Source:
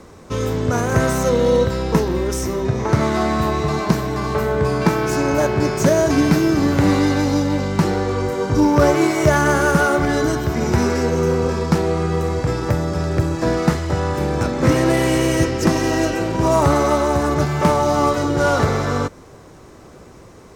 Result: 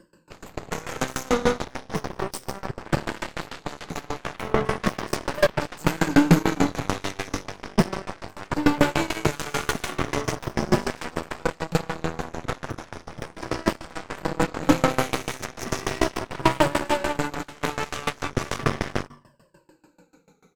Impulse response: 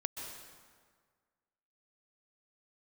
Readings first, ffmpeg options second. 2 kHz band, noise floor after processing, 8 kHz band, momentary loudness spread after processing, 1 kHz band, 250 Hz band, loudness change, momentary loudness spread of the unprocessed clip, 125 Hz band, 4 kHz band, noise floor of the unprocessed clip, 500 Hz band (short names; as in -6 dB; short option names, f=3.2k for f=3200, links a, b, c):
-5.5 dB, -59 dBFS, -6.5 dB, 13 LU, -7.0 dB, -8.0 dB, -8.0 dB, 6 LU, -10.5 dB, -3.5 dB, -43 dBFS, -10.0 dB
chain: -filter_complex "[0:a]afftfilt=real='re*pow(10,18/40*sin(2*PI*(1.3*log(max(b,1)*sr/1024/100)/log(2)-(-0.36)*(pts-256)/sr)))':imag='im*pow(10,18/40*sin(2*PI*(1.3*log(max(b,1)*sr/1024/100)/log(2)-(-0.36)*(pts-256)/sr)))':win_size=1024:overlap=0.75,asplit=2[a][b];[b]asoftclip=type=tanh:threshold=-11dB,volume=-7dB[c];[a][c]amix=inputs=2:normalize=0,equalizer=f=730:w=6.9:g=-6.5,volume=6.5dB,asoftclip=hard,volume=-6.5dB,lowshelf=f=110:t=q:w=1.5:g=-6.5,asplit=2[d][e];[e]adelay=168,lowpass=f=4.9k:p=1,volume=-11.5dB,asplit=2[f][g];[g]adelay=168,lowpass=f=4.9k:p=1,volume=0.2,asplit=2[h][i];[i]adelay=168,lowpass=f=4.9k:p=1,volume=0.2[j];[d][f][h][j]amix=inputs=4:normalize=0,flanger=delay=0.6:depth=8:regen=-23:speed=0.16:shape=sinusoidal,aeval=exprs='0.794*(cos(1*acos(clip(val(0)/0.794,-1,1)))-cos(1*PI/2))+0.02*(cos(3*acos(clip(val(0)/0.794,-1,1)))-cos(3*PI/2))+0.0891*(cos(6*acos(clip(val(0)/0.794,-1,1)))-cos(6*PI/2))+0.141*(cos(7*acos(clip(val(0)/0.794,-1,1)))-cos(7*PI/2))+0.0178*(cos(8*acos(clip(val(0)/0.794,-1,1)))-cos(8*PI/2))':c=same,aeval=exprs='val(0)*pow(10,-24*if(lt(mod(6.8*n/s,1),2*abs(6.8)/1000),1-mod(6.8*n/s,1)/(2*abs(6.8)/1000),(mod(6.8*n/s,1)-2*abs(6.8)/1000)/(1-2*abs(6.8)/1000))/20)':c=same"